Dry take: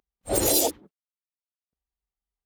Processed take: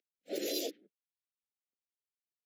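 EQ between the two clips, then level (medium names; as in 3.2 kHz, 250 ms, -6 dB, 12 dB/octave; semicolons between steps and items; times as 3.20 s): boxcar filter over 5 samples; Bessel high-pass 350 Hz, order 6; Butterworth band-stop 1 kHz, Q 0.69; -6.5 dB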